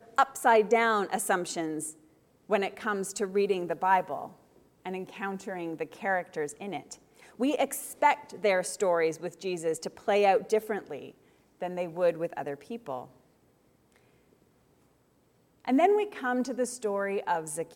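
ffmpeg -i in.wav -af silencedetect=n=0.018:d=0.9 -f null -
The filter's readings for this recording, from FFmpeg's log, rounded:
silence_start: 13.03
silence_end: 15.65 | silence_duration: 2.62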